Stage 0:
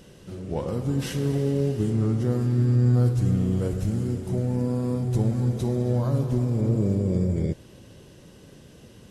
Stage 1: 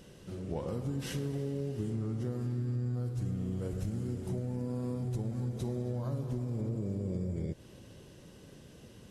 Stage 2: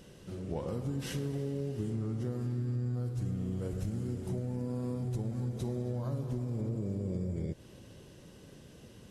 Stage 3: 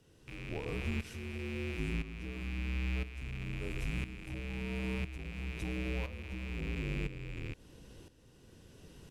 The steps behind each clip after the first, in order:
compression, threshold -27 dBFS, peak gain reduction 11 dB; trim -4.5 dB
no audible change
rattle on loud lows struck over -44 dBFS, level -30 dBFS; frequency shift -55 Hz; tremolo saw up 0.99 Hz, depth 75%

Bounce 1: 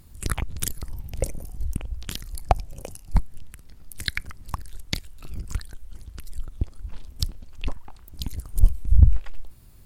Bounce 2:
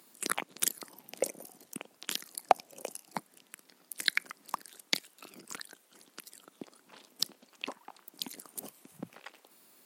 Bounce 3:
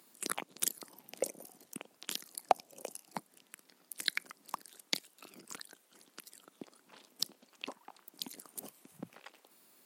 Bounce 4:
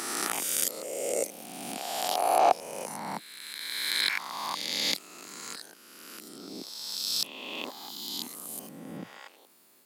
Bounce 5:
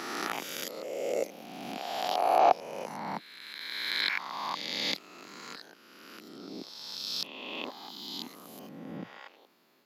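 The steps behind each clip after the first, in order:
Bessel high-pass 370 Hz, order 8
dynamic bell 1.8 kHz, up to -4 dB, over -51 dBFS, Q 1.1; trim -3 dB
reverse spectral sustain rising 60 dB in 1.98 s
boxcar filter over 5 samples

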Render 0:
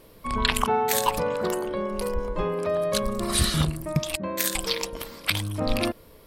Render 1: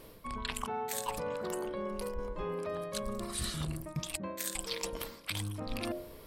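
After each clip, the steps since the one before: dynamic bell 8 kHz, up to +5 dB, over -43 dBFS; de-hum 88.01 Hz, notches 10; reverse; compression 5:1, threshold -35 dBFS, peak gain reduction 16.5 dB; reverse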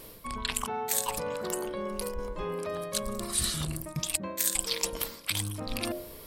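treble shelf 3.9 kHz +9 dB; trim +2.5 dB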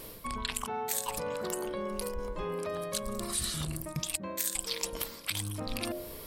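compression 2:1, threshold -36 dBFS, peak gain reduction 8 dB; trim +2 dB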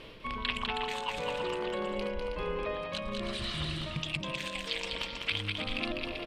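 resonant low-pass 2.9 kHz, resonance Q 2.7; on a send: bouncing-ball echo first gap 200 ms, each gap 0.6×, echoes 5; on the sum: trim -1.5 dB

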